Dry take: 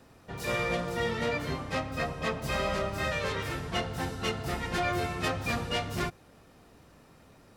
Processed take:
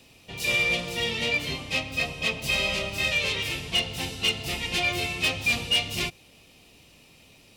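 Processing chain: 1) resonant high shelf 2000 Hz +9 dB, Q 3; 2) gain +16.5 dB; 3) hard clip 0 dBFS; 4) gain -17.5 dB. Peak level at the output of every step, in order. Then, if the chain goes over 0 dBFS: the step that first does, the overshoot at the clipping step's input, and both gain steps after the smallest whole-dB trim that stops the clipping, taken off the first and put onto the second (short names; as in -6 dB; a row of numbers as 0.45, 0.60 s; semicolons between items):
-8.0, +8.5, 0.0, -17.5 dBFS; step 2, 8.5 dB; step 2 +7.5 dB, step 4 -8.5 dB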